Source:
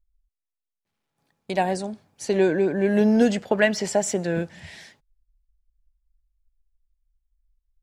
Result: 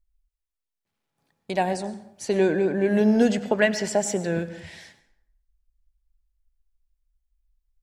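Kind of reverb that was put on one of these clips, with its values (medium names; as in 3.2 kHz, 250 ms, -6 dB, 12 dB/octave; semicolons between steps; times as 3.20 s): plate-style reverb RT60 0.73 s, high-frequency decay 0.65×, pre-delay 85 ms, DRR 14 dB; trim -1 dB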